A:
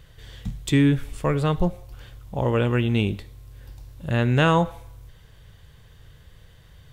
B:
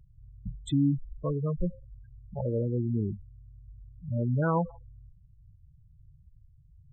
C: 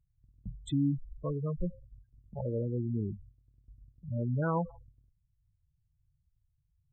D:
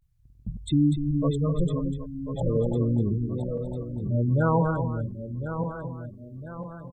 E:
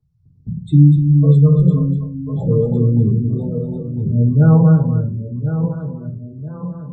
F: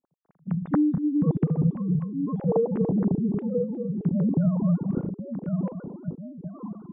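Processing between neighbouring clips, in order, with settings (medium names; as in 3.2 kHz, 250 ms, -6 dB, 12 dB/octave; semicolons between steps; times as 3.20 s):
spectral gate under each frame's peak -10 dB strong; trim -6.5 dB
gate -47 dBFS, range -14 dB; trim -4 dB
backward echo that repeats 511 ms, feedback 65%, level -6 dB; vibrato 0.35 Hz 65 cents; on a send: delay 246 ms -9 dB; on the sum: trim +7.5 dB
reverberation RT60 0.30 s, pre-delay 3 ms, DRR -9.5 dB; trim -16 dB
formants replaced by sine waves; low-pass 1.3 kHz 12 dB/octave; compression 6:1, threshold -14 dBFS, peak gain reduction 12 dB; trim -5.5 dB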